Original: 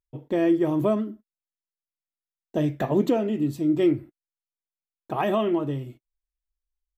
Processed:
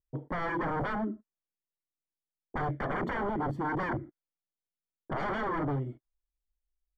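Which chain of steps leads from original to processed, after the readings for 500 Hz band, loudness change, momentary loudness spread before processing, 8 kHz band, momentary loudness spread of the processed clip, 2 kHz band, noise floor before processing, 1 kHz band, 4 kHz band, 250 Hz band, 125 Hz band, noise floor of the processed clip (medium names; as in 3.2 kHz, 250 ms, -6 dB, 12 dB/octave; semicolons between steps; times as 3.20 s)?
-11.5 dB, -8.5 dB, 11 LU, no reading, 9 LU, +4.0 dB, under -85 dBFS, 0.0 dB, -9.5 dB, -12.0 dB, -5.0 dB, under -85 dBFS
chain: wavefolder -27 dBFS; Savitzky-Golay filter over 41 samples; level-controlled noise filter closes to 480 Hz, open at -32.5 dBFS; trim +1 dB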